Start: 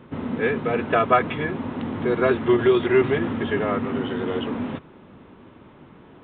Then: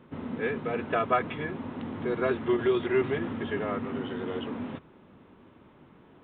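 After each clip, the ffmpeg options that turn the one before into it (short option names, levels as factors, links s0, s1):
-af "bandreject=f=60:t=h:w=6,bandreject=f=120:t=h:w=6,volume=0.422"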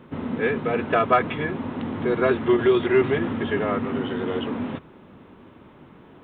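-af "acontrast=79"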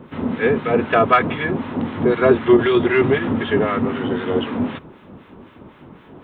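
-filter_complex "[0:a]acrossover=split=1100[s0][s1];[s0]aeval=exprs='val(0)*(1-0.7/2+0.7/2*cos(2*PI*3.9*n/s))':c=same[s2];[s1]aeval=exprs='val(0)*(1-0.7/2-0.7/2*cos(2*PI*3.9*n/s))':c=same[s3];[s2][s3]amix=inputs=2:normalize=0,volume=2.66"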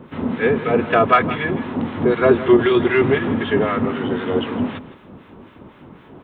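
-af "aecho=1:1:163:0.178"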